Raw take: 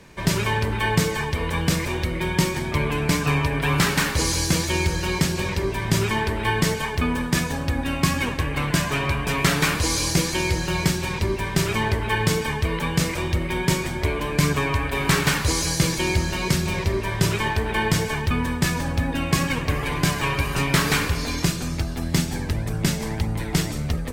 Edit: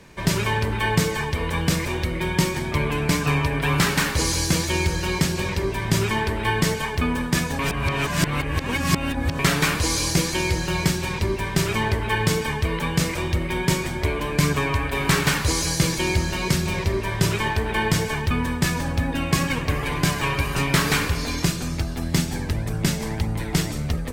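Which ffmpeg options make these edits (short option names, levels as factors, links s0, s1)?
-filter_complex "[0:a]asplit=3[s0][s1][s2];[s0]atrim=end=7.592[s3];[s1]atrim=start=7.588:end=9.392,asetpts=PTS-STARTPTS,areverse[s4];[s2]atrim=start=9.388[s5];[s3][s4]acrossfade=d=0.004:c1=hsin:c2=hsin[s6];[s6][s5]acrossfade=d=0.004:c1=hsin:c2=hsin"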